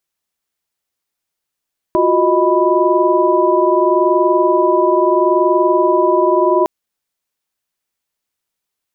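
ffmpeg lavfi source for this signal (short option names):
-f lavfi -i "aevalsrc='0.168*(sin(2*PI*349.23*t)+sin(2*PI*369.99*t)+sin(2*PI*622.25*t)+sin(2*PI*987.77*t))':d=4.71:s=44100"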